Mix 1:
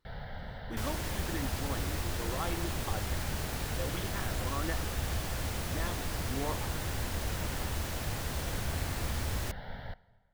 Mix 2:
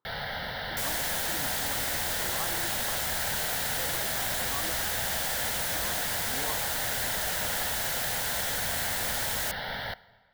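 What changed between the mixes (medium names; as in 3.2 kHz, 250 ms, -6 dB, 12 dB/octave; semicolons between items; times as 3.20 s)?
speech: add elliptic band-pass 100–1200 Hz; first sound +11.5 dB; master: add tilt EQ +3.5 dB/octave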